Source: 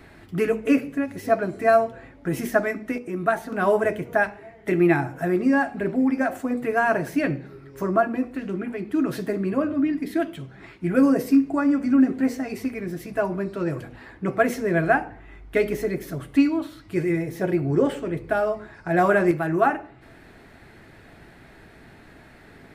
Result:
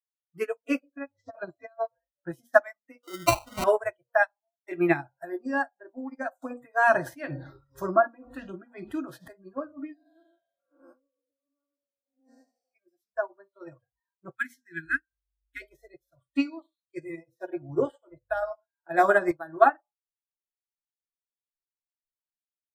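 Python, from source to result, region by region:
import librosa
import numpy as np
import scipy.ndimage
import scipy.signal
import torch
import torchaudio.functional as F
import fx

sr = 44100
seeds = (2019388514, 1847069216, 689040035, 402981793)

y = fx.chain(x, sr, fx.lowpass(hz=6800.0, slope=24),
    fx.over_compress(threshold_db=-22.0, ratio=-0.5), at=(0.83, 2.32))
y = fx.chain(y, sr, fx.high_shelf(hz=6200.0, db=-10.0),
    fx.sample_hold(seeds[0], rate_hz=1700.0, jitter_pct=0),
    fx.env_flatten(amount_pct=50), at=(3.03, 3.64))
y = fx.chain(y, sr, fx.tremolo(hz=2.0, depth=0.91),
    fx.env_flatten(amount_pct=70), at=(6.42, 9.28))
y = fx.chain(y, sr, fx.spec_blur(span_ms=490.0),
    fx.over_compress(threshold_db=-27.0, ratio=-0.5),
    fx.low_shelf(hz=220.0, db=-9.5), at=(9.94, 12.74))
y = fx.chain(y, sr, fx.cheby1_bandstop(low_hz=320.0, high_hz=1500.0, order=3),
    fx.high_shelf(hz=2200.0, db=3.5), at=(14.35, 15.62))
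y = fx.chain(y, sr, fx.hum_notches(base_hz=60, count=3),
    fx.echo_single(ms=101, db=-14.5), at=(16.22, 19.03))
y = fx.noise_reduce_blind(y, sr, reduce_db=29)
y = fx.peak_eq(y, sr, hz=230.0, db=-7.5, octaves=1.2)
y = fx.upward_expand(y, sr, threshold_db=-44.0, expansion=2.5)
y = y * 10.0 ** (4.0 / 20.0)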